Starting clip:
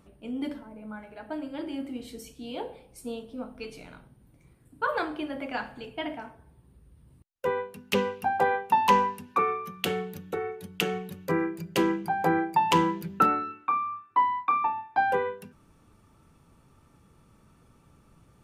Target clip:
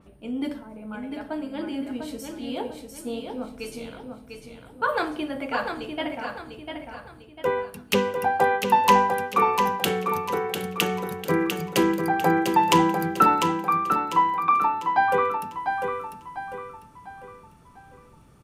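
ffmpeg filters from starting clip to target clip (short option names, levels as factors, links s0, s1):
-filter_complex "[0:a]asplit=2[s0][s1];[s1]aecho=0:1:698|1396|2094|2792|3490:0.501|0.2|0.0802|0.0321|0.0128[s2];[s0][s2]amix=inputs=2:normalize=0,adynamicequalizer=threshold=0.00447:dfrequency=4700:dqfactor=0.7:tfrequency=4700:tqfactor=0.7:attack=5:release=100:ratio=0.375:range=2.5:mode=boostabove:tftype=highshelf,volume=1.5"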